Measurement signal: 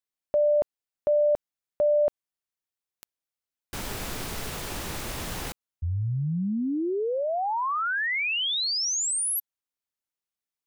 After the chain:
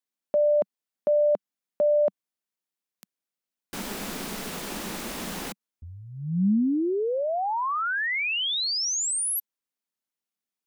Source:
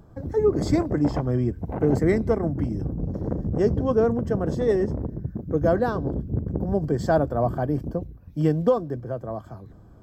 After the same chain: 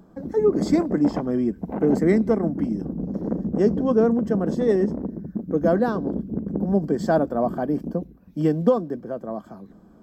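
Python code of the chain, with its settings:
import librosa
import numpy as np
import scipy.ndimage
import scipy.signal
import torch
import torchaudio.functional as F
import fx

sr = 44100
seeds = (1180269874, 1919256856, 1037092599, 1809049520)

y = fx.low_shelf_res(x, sr, hz=150.0, db=-9.0, q=3.0)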